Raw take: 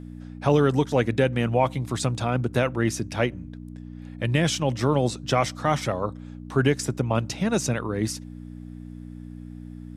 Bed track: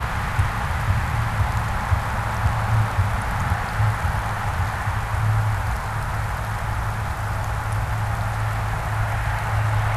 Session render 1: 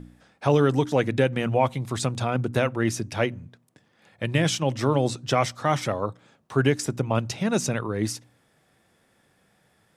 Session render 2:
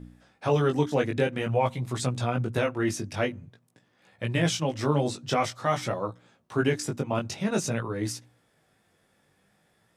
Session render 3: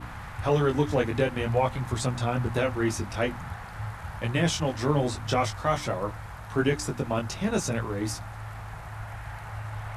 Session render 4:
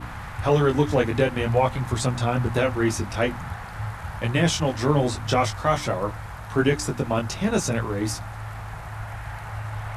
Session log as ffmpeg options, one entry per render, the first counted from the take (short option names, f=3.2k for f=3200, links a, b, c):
-af "bandreject=f=60:t=h:w=4,bandreject=f=120:t=h:w=4,bandreject=f=180:t=h:w=4,bandreject=f=240:t=h:w=4,bandreject=f=300:t=h:w=4"
-af "flanger=delay=16:depth=4.8:speed=0.49"
-filter_complex "[1:a]volume=-15dB[a];[0:a][a]amix=inputs=2:normalize=0"
-af "volume=4dB"